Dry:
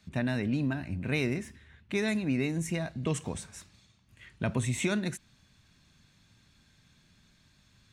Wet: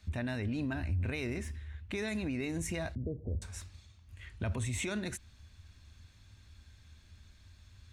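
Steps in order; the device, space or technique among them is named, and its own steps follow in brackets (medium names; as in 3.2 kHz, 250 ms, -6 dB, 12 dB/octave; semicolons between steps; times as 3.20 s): car stereo with a boomy subwoofer (resonant low shelf 110 Hz +9 dB, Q 3; peak limiter -27 dBFS, peak gain reduction 9 dB); 2.95–3.42 s: steep low-pass 590 Hz 48 dB/octave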